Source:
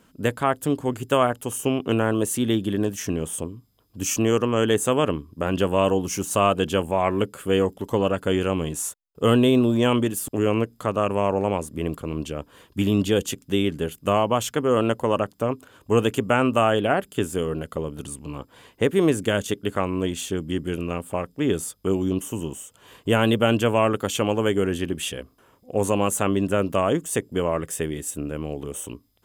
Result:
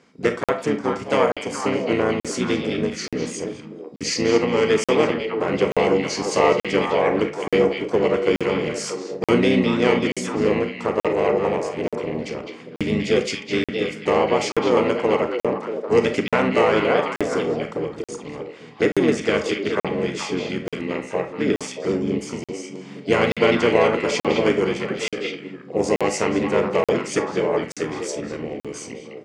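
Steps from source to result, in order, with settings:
echo through a band-pass that steps 211 ms, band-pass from 3,600 Hz, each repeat −1.4 octaves, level −2 dB
pitch-shifted copies added −5 semitones −1 dB, +7 semitones −16 dB
loudspeaker in its box 160–7,500 Hz, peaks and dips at 460 Hz +7 dB, 2,100 Hz +7 dB, 4,700 Hz +5 dB
on a send at −7.5 dB: convolution reverb RT60 0.35 s, pre-delay 30 ms
on the sum: regular buffer underruns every 0.88 s, samples 2,048, zero, from 0:00.44
level −3 dB

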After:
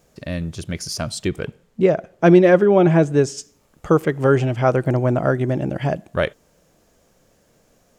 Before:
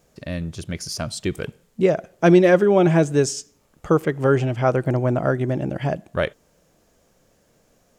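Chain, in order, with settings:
0:01.27–0:03.37: high-shelf EQ 5,500 Hz → 3,800 Hz −10.5 dB
level +2 dB

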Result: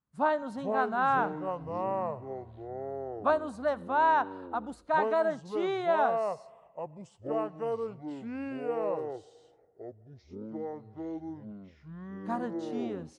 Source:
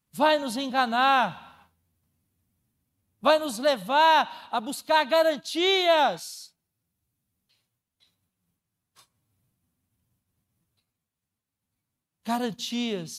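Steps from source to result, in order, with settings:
high shelf with overshoot 2,100 Hz −13 dB, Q 1.5
delay with pitch and tempo change per echo 366 ms, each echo −6 semitones, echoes 3, each echo −6 dB
downsampling to 22,050 Hz
level −7 dB

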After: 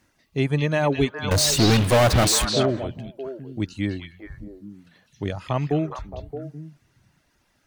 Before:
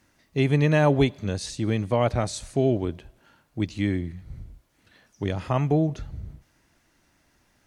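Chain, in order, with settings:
reverb reduction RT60 0.86 s
0:01.31–0:02.45: power curve on the samples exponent 0.35
echo through a band-pass that steps 207 ms, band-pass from 3,400 Hz, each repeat −1.4 octaves, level −1.5 dB

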